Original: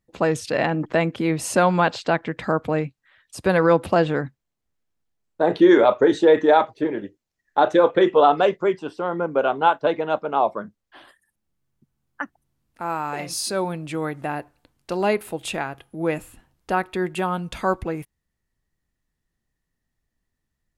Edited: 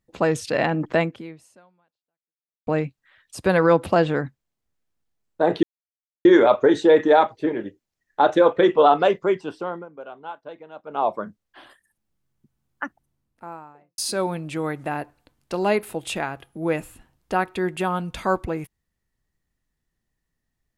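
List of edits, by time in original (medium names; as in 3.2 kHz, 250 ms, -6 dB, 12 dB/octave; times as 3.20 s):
1.01–2.67 s: fade out exponential
5.63 s: insert silence 0.62 s
8.82–10.62 s: dip -18 dB, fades 0.42 s equal-power
12.21–13.36 s: studio fade out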